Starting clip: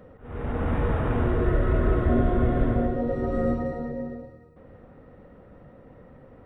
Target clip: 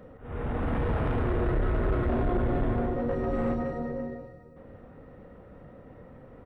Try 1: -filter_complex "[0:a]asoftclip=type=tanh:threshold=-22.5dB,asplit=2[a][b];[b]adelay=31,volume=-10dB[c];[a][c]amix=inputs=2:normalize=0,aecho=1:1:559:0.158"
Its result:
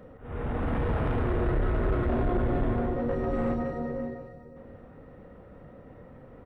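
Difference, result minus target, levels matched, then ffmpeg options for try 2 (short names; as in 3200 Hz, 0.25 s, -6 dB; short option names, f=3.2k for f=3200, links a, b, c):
echo-to-direct +6.5 dB
-filter_complex "[0:a]asoftclip=type=tanh:threshold=-22.5dB,asplit=2[a][b];[b]adelay=31,volume=-10dB[c];[a][c]amix=inputs=2:normalize=0,aecho=1:1:559:0.075"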